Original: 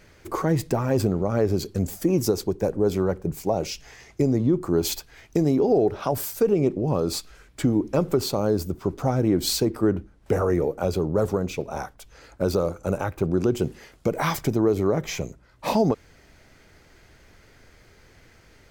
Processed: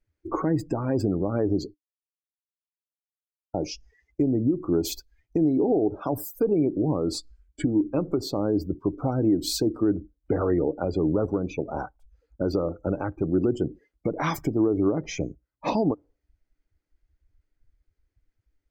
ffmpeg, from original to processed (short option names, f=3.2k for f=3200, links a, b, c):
-filter_complex "[0:a]asplit=3[a][b][c];[a]atrim=end=1.74,asetpts=PTS-STARTPTS,afade=t=out:st=1.736:d=0.004:c=hsin[d];[b]atrim=start=1.74:end=3.54,asetpts=PTS-STARTPTS,volume=0[e];[c]atrim=start=3.54,asetpts=PTS-STARTPTS,afade=t=in:d=0.004:c=hsin[f];[d][e][f]concat=n=3:v=0:a=1,afftdn=nr=34:nf=-35,equalizer=f=300:t=o:w=0.26:g=12,alimiter=limit=-14dB:level=0:latency=1:release=354"